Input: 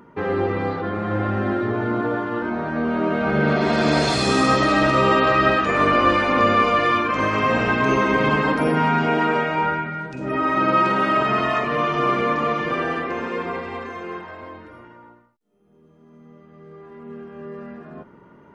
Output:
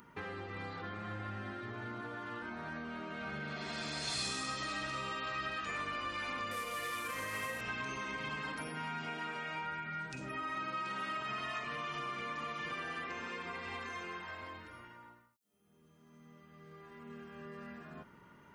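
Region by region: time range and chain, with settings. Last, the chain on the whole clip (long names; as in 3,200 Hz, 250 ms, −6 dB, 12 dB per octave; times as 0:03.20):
0:06.51–0:07.61: variable-slope delta modulation 64 kbit/s + hollow resonant body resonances 500/1,900 Hz, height 15 dB, ringing for 100 ms
whole clip: high-shelf EQ 7,300 Hz +8.5 dB; downward compressor, threshold −30 dBFS; guitar amp tone stack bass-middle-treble 5-5-5; level +6 dB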